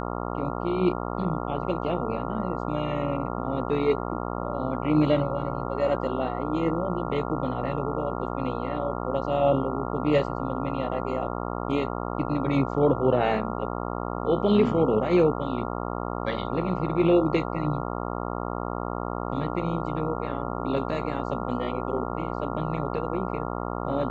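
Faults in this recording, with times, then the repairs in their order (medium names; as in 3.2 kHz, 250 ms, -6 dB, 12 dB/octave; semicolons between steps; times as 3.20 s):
buzz 60 Hz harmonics 23 -31 dBFS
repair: de-hum 60 Hz, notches 23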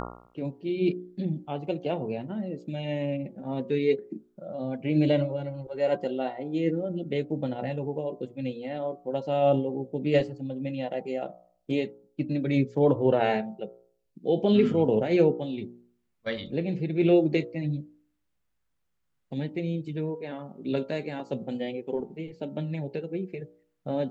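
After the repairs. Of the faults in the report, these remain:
nothing left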